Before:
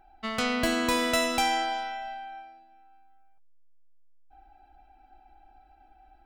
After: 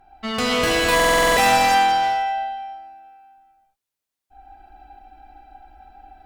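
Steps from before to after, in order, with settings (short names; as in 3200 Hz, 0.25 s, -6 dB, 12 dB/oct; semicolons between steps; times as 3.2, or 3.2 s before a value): non-linear reverb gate 0.38 s flat, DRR -6 dB; one-sided clip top -22.5 dBFS; stuck buffer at 0.95, samples 2048, times 8; gain +4 dB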